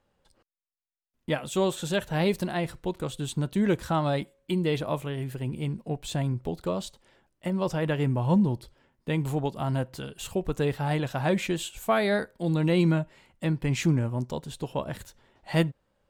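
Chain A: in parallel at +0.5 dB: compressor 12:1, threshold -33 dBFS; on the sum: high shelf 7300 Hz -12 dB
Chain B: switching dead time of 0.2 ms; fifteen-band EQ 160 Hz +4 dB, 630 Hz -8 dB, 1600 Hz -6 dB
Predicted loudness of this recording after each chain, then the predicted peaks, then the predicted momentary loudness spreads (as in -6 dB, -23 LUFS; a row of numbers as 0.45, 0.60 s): -26.5, -27.5 LUFS; -8.5, -9.0 dBFS; 8, 12 LU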